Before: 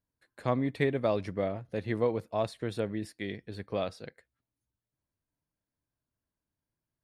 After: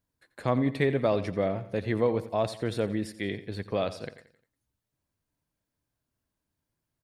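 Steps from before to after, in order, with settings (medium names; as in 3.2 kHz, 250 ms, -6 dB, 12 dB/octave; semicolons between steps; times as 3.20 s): in parallel at -2 dB: peak limiter -25 dBFS, peak gain reduction 10.5 dB; on the sum: feedback delay 88 ms, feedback 44%, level -15 dB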